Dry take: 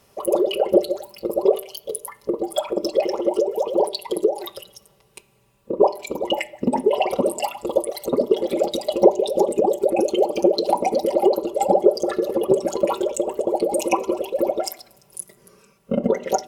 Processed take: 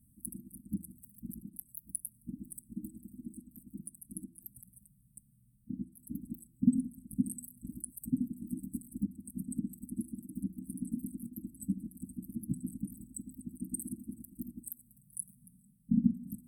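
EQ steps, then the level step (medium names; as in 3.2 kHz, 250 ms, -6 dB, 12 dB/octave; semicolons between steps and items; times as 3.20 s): brick-wall FIR band-stop 300–7900 Hz; bass shelf 360 Hz +5.5 dB; -7.0 dB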